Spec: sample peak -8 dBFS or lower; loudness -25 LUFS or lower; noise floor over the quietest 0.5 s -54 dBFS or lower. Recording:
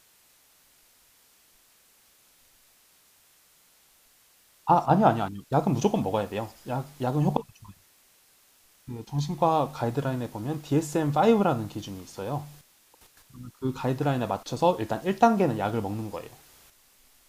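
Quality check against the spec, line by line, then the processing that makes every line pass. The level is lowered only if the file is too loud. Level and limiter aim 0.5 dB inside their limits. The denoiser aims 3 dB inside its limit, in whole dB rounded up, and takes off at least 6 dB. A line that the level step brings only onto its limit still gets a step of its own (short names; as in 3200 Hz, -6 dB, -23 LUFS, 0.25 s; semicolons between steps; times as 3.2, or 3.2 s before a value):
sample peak -6.5 dBFS: fail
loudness -26.5 LUFS: OK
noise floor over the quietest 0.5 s -61 dBFS: OK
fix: limiter -8.5 dBFS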